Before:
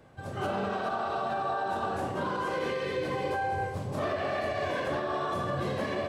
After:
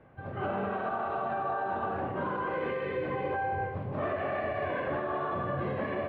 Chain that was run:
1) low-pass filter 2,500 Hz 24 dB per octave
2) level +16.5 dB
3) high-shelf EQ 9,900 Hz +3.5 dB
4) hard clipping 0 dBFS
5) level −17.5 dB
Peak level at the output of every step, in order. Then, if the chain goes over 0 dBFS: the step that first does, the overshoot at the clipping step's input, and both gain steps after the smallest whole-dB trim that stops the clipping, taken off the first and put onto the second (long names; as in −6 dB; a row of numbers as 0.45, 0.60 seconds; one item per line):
−21.0, −4.5, −4.5, −4.5, −22.0 dBFS
no step passes full scale